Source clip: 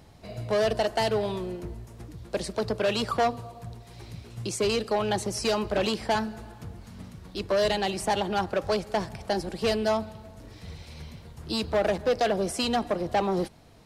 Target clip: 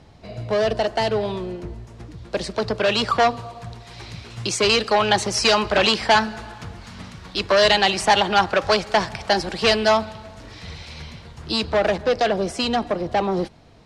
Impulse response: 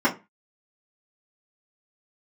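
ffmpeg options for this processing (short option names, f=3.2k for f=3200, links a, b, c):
-filter_complex "[0:a]lowpass=6k,acrossover=split=840[a][b];[b]dynaudnorm=f=380:g=17:m=10dB[c];[a][c]amix=inputs=2:normalize=0,volume=4dB"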